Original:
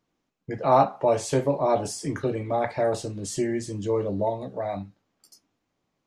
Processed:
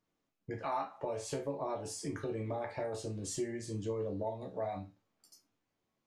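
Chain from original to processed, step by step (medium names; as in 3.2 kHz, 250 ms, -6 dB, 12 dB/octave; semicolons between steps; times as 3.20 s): 0.58–0.98 s: graphic EQ 125/500/1000/2000/8000 Hz -11/-9/+3/+5/+6 dB; compression 4:1, threshold -28 dBFS, peak gain reduction 11.5 dB; chord resonator D2 major, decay 0.23 s; trim +3 dB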